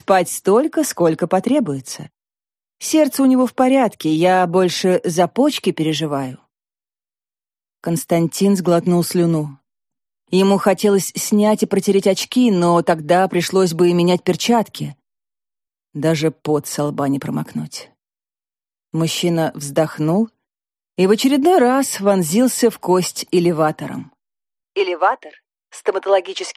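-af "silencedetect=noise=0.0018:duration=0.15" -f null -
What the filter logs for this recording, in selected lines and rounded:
silence_start: 2.09
silence_end: 2.80 | silence_duration: 0.71
silence_start: 6.45
silence_end: 7.83 | silence_duration: 1.39
silence_start: 9.60
silence_end: 10.28 | silence_duration: 0.68
silence_start: 14.95
silence_end: 15.94 | silence_duration: 0.99
silence_start: 17.93
silence_end: 18.93 | silence_duration: 1.00
silence_start: 20.31
silence_end: 20.97 | silence_duration: 0.66
silence_start: 24.14
silence_end: 24.76 | silence_duration: 0.63
silence_start: 25.39
silence_end: 25.72 | silence_duration: 0.32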